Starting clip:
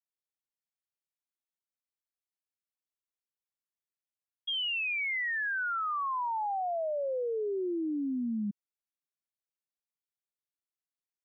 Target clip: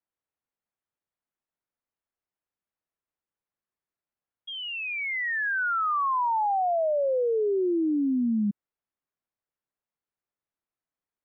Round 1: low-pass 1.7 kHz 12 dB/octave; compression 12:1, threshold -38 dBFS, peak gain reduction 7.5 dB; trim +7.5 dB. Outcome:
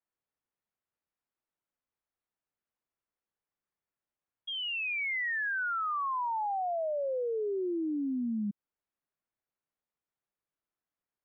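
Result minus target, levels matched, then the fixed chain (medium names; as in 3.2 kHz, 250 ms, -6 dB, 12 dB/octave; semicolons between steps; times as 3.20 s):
compression: peak gain reduction +7.5 dB
low-pass 1.7 kHz 12 dB/octave; trim +7.5 dB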